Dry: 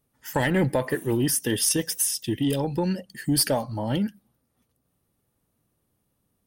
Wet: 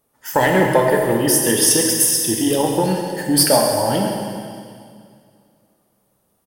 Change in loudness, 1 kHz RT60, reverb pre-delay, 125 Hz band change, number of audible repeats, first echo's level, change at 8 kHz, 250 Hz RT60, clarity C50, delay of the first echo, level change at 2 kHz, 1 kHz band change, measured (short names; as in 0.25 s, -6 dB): +9.0 dB, 2.2 s, 10 ms, +3.0 dB, 1, -12.5 dB, +10.0 dB, 2.4 s, 2.0 dB, 0.137 s, +9.0 dB, +13.0 dB